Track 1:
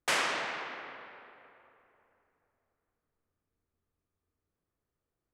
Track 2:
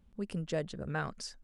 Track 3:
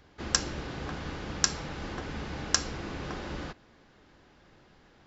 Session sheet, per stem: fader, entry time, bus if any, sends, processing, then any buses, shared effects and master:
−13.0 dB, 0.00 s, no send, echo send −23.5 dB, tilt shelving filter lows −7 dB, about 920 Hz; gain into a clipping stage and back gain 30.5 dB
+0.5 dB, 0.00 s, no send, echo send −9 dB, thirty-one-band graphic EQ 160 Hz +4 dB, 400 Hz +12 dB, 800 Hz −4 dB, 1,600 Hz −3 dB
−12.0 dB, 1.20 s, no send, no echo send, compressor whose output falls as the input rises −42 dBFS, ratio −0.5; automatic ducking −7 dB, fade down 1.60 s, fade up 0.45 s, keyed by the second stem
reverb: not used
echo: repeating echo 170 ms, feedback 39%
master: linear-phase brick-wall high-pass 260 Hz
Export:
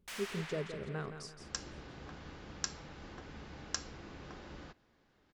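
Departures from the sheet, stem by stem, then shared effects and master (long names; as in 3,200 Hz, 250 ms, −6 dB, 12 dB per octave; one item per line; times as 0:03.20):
stem 2 +0.5 dB → −7.0 dB
stem 3: missing compressor whose output falls as the input rises −42 dBFS, ratio −0.5
master: missing linear-phase brick-wall high-pass 260 Hz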